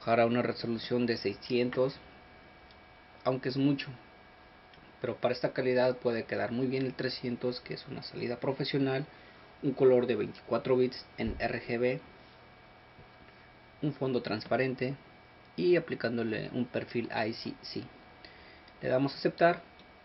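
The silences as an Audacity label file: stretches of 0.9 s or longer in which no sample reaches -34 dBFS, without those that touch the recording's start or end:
1.910000	3.260000	silence
3.830000	5.040000	silence
11.980000	13.830000	silence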